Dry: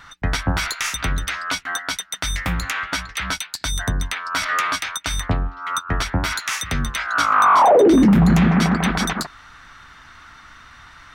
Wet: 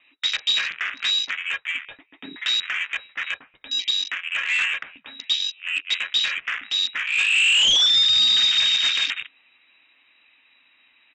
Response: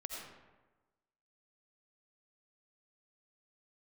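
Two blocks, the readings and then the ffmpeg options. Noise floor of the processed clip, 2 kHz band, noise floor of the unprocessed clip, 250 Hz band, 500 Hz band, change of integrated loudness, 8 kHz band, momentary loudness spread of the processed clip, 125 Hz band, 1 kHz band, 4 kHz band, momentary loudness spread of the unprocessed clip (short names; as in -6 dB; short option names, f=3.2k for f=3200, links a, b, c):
-61 dBFS, +0.5 dB, -46 dBFS, under -30 dB, under -25 dB, 0.0 dB, -5.0 dB, 15 LU, under -30 dB, -20.5 dB, +10.5 dB, 13 LU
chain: -af "flanger=delay=7.4:depth=7.9:regen=-42:speed=0.53:shape=triangular,lowpass=f=3.3k:t=q:w=0.5098,lowpass=f=3.3k:t=q:w=0.6013,lowpass=f=3.3k:t=q:w=0.9,lowpass=f=3.3k:t=q:w=2.563,afreqshift=-3900,afwtdn=0.0398,aresample=16000,asoftclip=type=tanh:threshold=-21dB,aresample=44100,volume=6dB"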